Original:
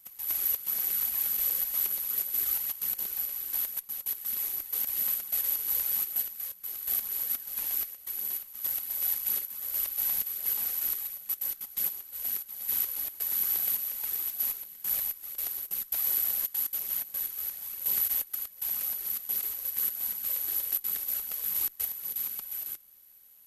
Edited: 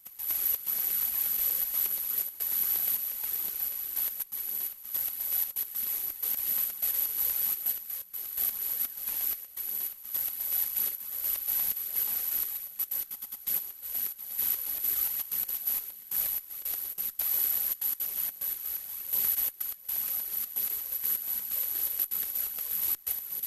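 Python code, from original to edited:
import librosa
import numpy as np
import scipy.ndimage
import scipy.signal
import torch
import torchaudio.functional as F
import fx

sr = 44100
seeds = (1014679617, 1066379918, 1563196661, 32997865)

y = fx.edit(x, sr, fx.swap(start_s=2.29, length_s=0.72, other_s=13.09, other_length_s=1.15),
    fx.duplicate(start_s=8.07, length_s=1.07, to_s=3.94),
    fx.stutter(start_s=11.62, slice_s=0.1, count=3), tone=tone)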